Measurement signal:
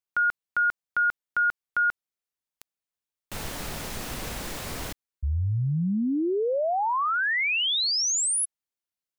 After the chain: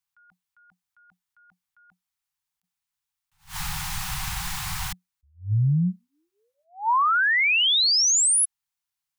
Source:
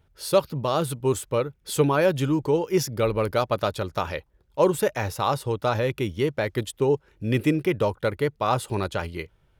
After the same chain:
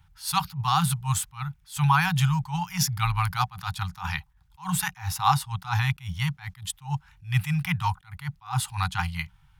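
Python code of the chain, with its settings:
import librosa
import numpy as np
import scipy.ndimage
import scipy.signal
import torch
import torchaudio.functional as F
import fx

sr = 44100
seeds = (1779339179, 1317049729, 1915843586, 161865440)

y = scipy.signal.sosfilt(scipy.signal.ellip(5, 1.0, 50, [180.0, 760.0], 'bandstop', fs=sr, output='sos'), x)
y = fx.attack_slew(y, sr, db_per_s=210.0)
y = y * librosa.db_to_amplitude(5.5)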